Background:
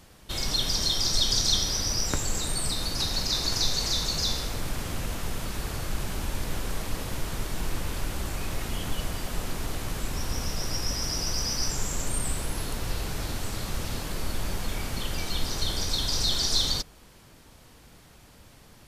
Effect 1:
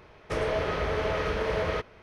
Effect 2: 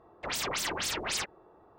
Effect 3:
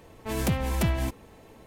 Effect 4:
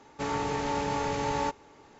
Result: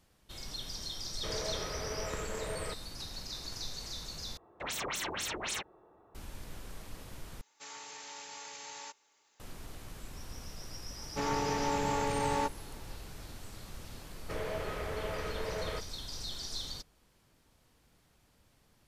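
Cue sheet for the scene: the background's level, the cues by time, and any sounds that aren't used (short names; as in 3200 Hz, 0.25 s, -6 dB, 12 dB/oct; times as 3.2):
background -15 dB
0.93 add 1 -11 dB
4.37 replace with 2 -3.5 dB + notch 4800 Hz, Q 6.2
7.41 replace with 4 -1 dB + differentiator
10.97 add 4 -2 dB
13.99 add 1 -9.5 dB
not used: 3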